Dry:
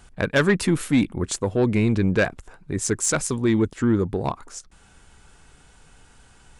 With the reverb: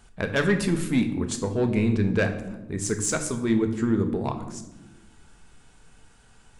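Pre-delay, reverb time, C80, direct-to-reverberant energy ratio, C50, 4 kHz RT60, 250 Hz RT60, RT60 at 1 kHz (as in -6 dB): 4 ms, 1.1 s, 13.0 dB, 6.0 dB, 10.0 dB, 0.65 s, 1.9 s, 0.80 s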